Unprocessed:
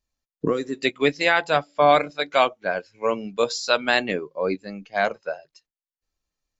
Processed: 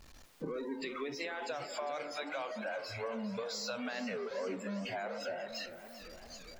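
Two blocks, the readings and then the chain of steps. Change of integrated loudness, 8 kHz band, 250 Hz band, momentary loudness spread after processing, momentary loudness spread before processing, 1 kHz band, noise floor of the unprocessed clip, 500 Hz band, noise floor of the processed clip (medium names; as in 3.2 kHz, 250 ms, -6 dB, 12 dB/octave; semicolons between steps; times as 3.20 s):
-17.0 dB, no reading, -11.5 dB, 8 LU, 11 LU, -19.0 dB, under -85 dBFS, -16.0 dB, -55 dBFS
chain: jump at every zero crossing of -20 dBFS; hum notches 50/100/150 Hz; spectral noise reduction 24 dB; treble shelf 5.2 kHz -9 dB; peak limiter -14 dBFS, peak gain reduction 9 dB; compression 2.5:1, threshold -40 dBFS, peak gain reduction 14.5 dB; on a send: repeats whose band climbs or falls 113 ms, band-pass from 370 Hz, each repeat 0.7 oct, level -10 dB; on the sum: modulated delay 398 ms, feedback 69%, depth 112 cents, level -13 dB; trim -3.5 dB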